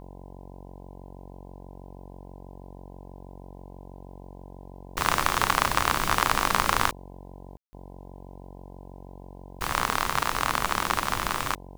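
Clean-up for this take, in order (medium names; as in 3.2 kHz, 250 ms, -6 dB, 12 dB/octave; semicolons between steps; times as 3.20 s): de-hum 46.2 Hz, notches 22; room tone fill 7.57–7.73 s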